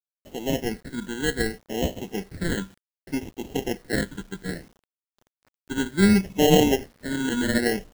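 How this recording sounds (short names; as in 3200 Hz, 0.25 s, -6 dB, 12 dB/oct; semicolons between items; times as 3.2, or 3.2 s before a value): aliases and images of a low sample rate 1200 Hz, jitter 0%; phasing stages 8, 0.65 Hz, lowest notch 700–1500 Hz; a quantiser's noise floor 10-bit, dither none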